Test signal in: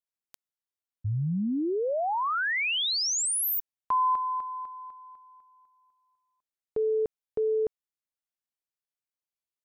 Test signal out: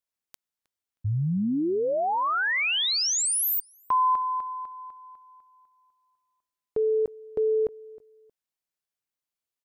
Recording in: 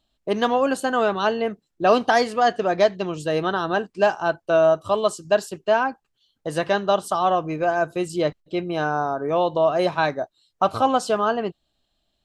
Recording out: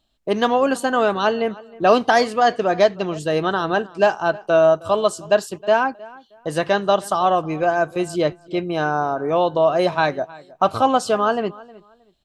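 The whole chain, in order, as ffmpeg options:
-filter_complex "[0:a]asplit=2[s0][s1];[s1]adelay=314,lowpass=f=3400:p=1,volume=0.0891,asplit=2[s2][s3];[s3]adelay=314,lowpass=f=3400:p=1,volume=0.24[s4];[s0][s2][s4]amix=inputs=3:normalize=0,volume=1.33"

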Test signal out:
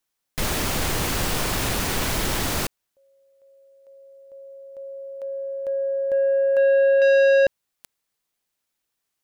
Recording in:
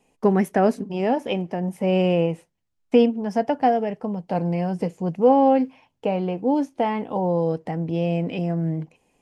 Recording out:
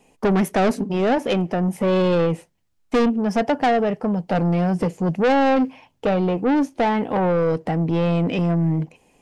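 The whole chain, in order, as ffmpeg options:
-af "asoftclip=type=tanh:threshold=0.0794,volume=2.37"

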